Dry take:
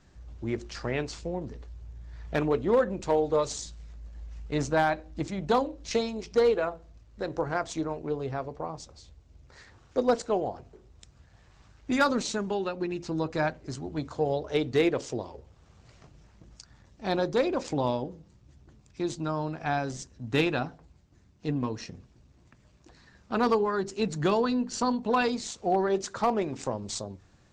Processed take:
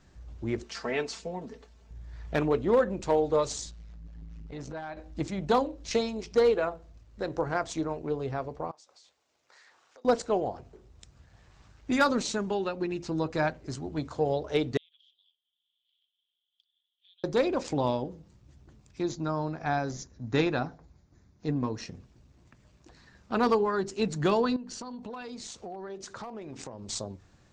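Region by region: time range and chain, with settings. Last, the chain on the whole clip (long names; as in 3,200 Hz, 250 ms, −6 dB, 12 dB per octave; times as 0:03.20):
0:00.63–0:01.91: high-pass filter 320 Hz 6 dB per octave + comb filter 4.5 ms, depth 69%
0:03.71–0:04.97: low-pass filter 6,000 Hz + downward compressor 10 to 1, threshold −33 dBFS + saturating transformer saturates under 320 Hz
0:08.71–0:10.05: high-pass filter 690 Hz + downward compressor 8 to 1, threshold −53 dBFS
0:14.77–0:17.24: flat-topped band-pass 3,300 Hz, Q 7.9 + downward compressor 4 to 1, threshold −59 dBFS
0:19.03–0:21.78: linear-phase brick-wall low-pass 7,300 Hz + parametric band 2,900 Hz −9 dB 0.41 octaves
0:24.56–0:26.89: notch filter 7,400 Hz, Q 27 + downward compressor 8 to 1, threshold −37 dBFS
whole clip: no processing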